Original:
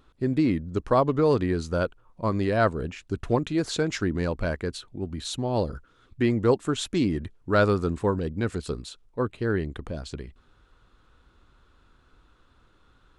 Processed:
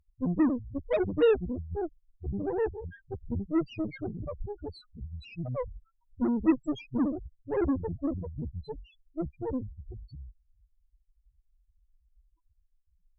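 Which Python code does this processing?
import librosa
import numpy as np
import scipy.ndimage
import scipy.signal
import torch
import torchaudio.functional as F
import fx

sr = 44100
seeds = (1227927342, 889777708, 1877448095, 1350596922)

y = fx.pitch_trill(x, sr, semitones=-7.0, every_ms=194)
y = fx.spec_topn(y, sr, count=1)
y = fx.cheby_harmonics(y, sr, harmonics=(3, 8), levels_db=(-18, -23), full_scale_db=-20.0)
y = y * librosa.db_to_amplitude(6.5)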